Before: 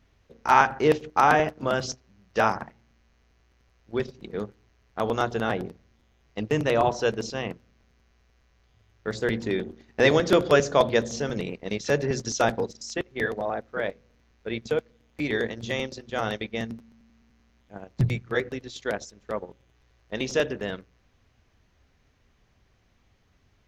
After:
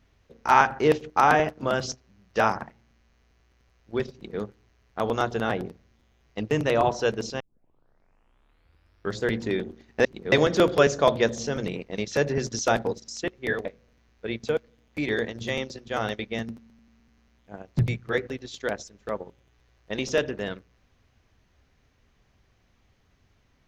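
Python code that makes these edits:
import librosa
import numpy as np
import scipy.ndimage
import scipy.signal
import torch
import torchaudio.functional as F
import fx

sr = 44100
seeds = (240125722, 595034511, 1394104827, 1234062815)

y = fx.edit(x, sr, fx.duplicate(start_s=4.13, length_s=0.27, to_s=10.05),
    fx.tape_start(start_s=7.4, length_s=1.82),
    fx.cut(start_s=13.38, length_s=0.49), tone=tone)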